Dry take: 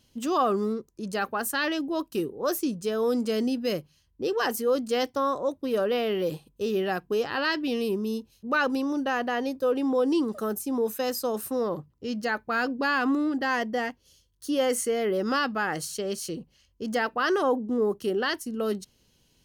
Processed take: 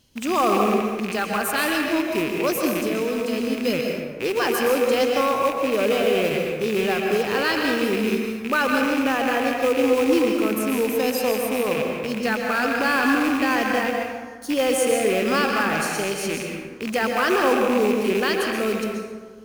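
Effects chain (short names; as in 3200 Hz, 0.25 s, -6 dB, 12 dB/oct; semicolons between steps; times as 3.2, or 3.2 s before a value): rattling part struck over -43 dBFS, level -22 dBFS; 2.71–3.58 compressor 4:1, threshold -27 dBFS, peak gain reduction 5.5 dB; short-mantissa float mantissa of 2-bit; plate-style reverb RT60 1.5 s, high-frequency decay 0.5×, pre-delay 0.11 s, DRR 1 dB; gain +3 dB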